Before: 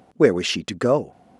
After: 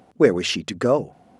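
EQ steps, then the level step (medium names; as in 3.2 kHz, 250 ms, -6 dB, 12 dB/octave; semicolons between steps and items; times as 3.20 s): hum notches 50/100/150 Hz; 0.0 dB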